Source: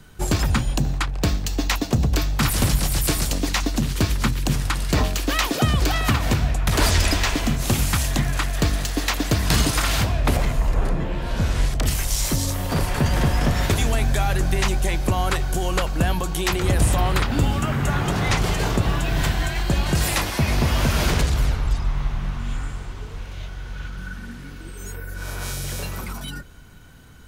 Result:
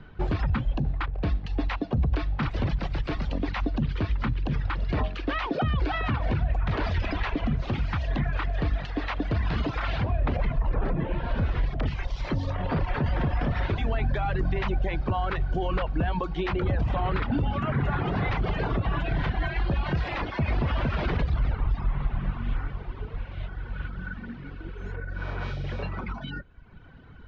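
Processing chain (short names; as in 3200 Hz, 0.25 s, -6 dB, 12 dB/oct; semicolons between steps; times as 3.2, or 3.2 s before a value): reverb removal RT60 1 s; limiter -18.5 dBFS, peak gain reduction 10.5 dB; Gaussian blur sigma 2.9 samples; gain +1.5 dB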